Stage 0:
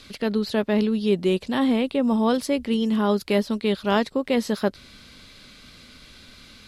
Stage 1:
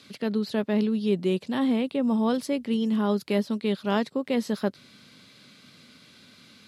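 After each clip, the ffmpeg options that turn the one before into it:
ffmpeg -i in.wav -af "highpass=frequency=130:width=0.5412,highpass=frequency=130:width=1.3066,lowshelf=frequency=180:gain=8,volume=-5.5dB" out.wav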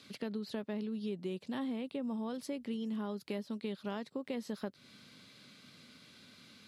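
ffmpeg -i in.wav -af "acompressor=threshold=-31dB:ratio=5,volume=-5dB" out.wav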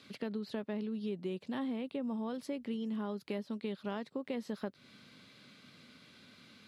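ffmpeg -i in.wav -af "bass=frequency=250:gain=-1,treble=frequency=4000:gain=-6,volume=1dB" out.wav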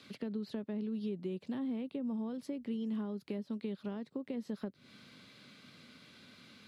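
ffmpeg -i in.wav -filter_complex "[0:a]acrossover=split=420[link_01][link_02];[link_02]acompressor=threshold=-53dB:ratio=3[link_03];[link_01][link_03]amix=inputs=2:normalize=0,volume=1dB" out.wav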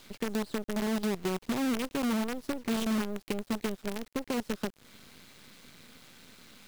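ffmpeg -i in.wav -af "acrusher=bits=7:dc=4:mix=0:aa=0.000001,volume=6dB" out.wav

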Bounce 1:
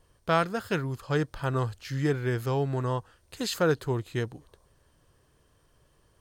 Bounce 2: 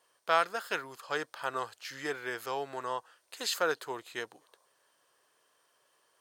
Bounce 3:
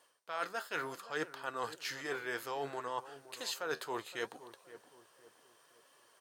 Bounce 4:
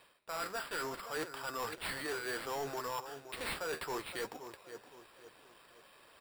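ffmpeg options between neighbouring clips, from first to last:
ffmpeg -i in.wav -af "highpass=660" out.wav
ffmpeg -i in.wav -filter_complex "[0:a]areverse,acompressor=threshold=-39dB:ratio=12,areverse,flanger=delay=3.4:depth=9.5:regen=65:speed=0.67:shape=sinusoidal,asplit=2[link_01][link_02];[link_02]adelay=518,lowpass=frequency=990:poles=1,volume=-13.5dB,asplit=2[link_03][link_04];[link_04]adelay=518,lowpass=frequency=990:poles=1,volume=0.43,asplit=2[link_05][link_06];[link_06]adelay=518,lowpass=frequency=990:poles=1,volume=0.43,asplit=2[link_07][link_08];[link_08]adelay=518,lowpass=frequency=990:poles=1,volume=0.43[link_09];[link_01][link_03][link_05][link_07][link_09]amix=inputs=5:normalize=0,volume=9dB" out.wav
ffmpeg -i in.wav -af "acrusher=samples=7:mix=1:aa=0.000001,asoftclip=type=tanh:threshold=-38.5dB,volume=5dB" out.wav

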